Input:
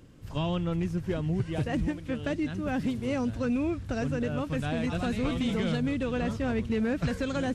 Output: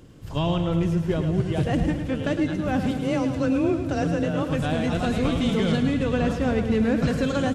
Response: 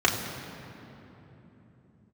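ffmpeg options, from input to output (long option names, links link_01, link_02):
-filter_complex "[0:a]asettb=1/sr,asplit=3[link_01][link_02][link_03];[link_01]atrim=end=2.914[link_04];[link_02]atrim=start=2.91:end=4.43,asetpts=PTS-STARTPTS,afade=type=in:duration=0.004:curve=qsin,afade=type=out:start_time=1.516:duration=0.004:curve=qsin,afreqshift=24[link_05];[link_03]atrim=start=4.426[link_06];[link_04][link_05]acrossfade=duration=0.004:curve1=hsin:curve2=qsin[link_07];[link_07][link_06]acrossfade=duration=0.004:curve1=qsin:curve2=hsin,aecho=1:1:108|216|324|432|540|648:0.376|0.203|0.11|0.0592|0.032|0.0173,asplit=2[link_08][link_09];[1:a]atrim=start_sample=2205[link_10];[link_09][link_10]afir=irnorm=-1:irlink=0,volume=-26.5dB[link_11];[link_08][link_11]amix=inputs=2:normalize=0,volume=4.5dB"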